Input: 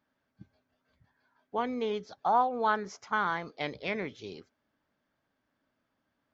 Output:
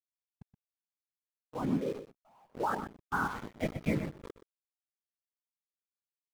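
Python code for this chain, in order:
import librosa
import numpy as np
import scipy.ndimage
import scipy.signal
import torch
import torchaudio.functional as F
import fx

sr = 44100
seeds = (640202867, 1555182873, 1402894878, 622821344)

p1 = fx.law_mismatch(x, sr, coded='mu')
p2 = fx.dereverb_blind(p1, sr, rt60_s=1.6)
p3 = fx.bass_treble(p2, sr, bass_db=12, treble_db=-13)
p4 = fx.level_steps(p3, sr, step_db=10)
p5 = fx.whisperise(p4, sr, seeds[0])
p6 = fx.quant_dither(p5, sr, seeds[1], bits=6, dither='none')
p7 = fx.tube_stage(p6, sr, drive_db=49.0, bias=0.6, at=(1.99, 2.55))
p8 = p7 + fx.echo_single(p7, sr, ms=123, db=-8.5, dry=0)
p9 = fx.rider(p8, sr, range_db=10, speed_s=0.5)
y = fx.spectral_expand(p9, sr, expansion=1.5)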